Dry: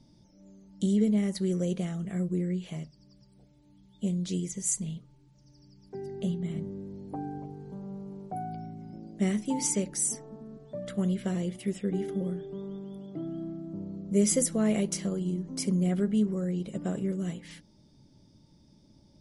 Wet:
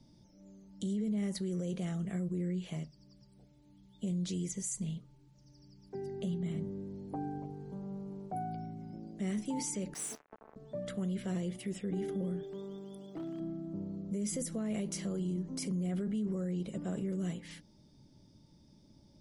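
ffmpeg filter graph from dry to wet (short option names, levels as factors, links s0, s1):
-filter_complex "[0:a]asettb=1/sr,asplit=3[s0][s1][s2];[s0]atrim=end=9.944[s3];[s1]atrim=start=9.94:end=10.56,asetpts=PTS-STARTPTS,afade=t=in:d=0.004:c=qsin,afade=t=out:st=0.616:d=0.004:c=qsin,acrusher=bits=5:mix=0:aa=0.5,bass=f=250:g=-11,treble=f=4000:g=-10[s4];[s2]atrim=start=10.556[s5];[s3][s4]acrossfade=d=0.004:c1=hsin:c2=qsin[s6];[s6][s5]acrossfade=d=0.004:c1=qsin:c2=hsin,asettb=1/sr,asplit=3[s7][s8][s9];[s7]atrim=end=12.434[s10];[s8]atrim=start=12.43:end=13.4,asetpts=PTS-STARTPTS,afade=t=in:d=0.004:c=qsin,afade=t=out:st=0.966:d=0.004:c=qsin,bass=f=250:g=-7,treble=f=4000:g=10,aeval=exprs='0.0224*(abs(mod(val(0)/0.0224+3,4)-2)-1)':c=same[s11];[s9]atrim=start=13.396[s12];[s10][s11]acrossfade=d=0.004:c1=hsin:c2=qsin[s13];[s13][s12]acrossfade=d=0.004:c1=qsin:c2=hsin,acrossover=split=240[s14][s15];[s15]acompressor=threshold=0.0355:ratio=6[s16];[s14][s16]amix=inputs=2:normalize=0,alimiter=level_in=1.33:limit=0.0631:level=0:latency=1:release=14,volume=0.75,volume=0.794"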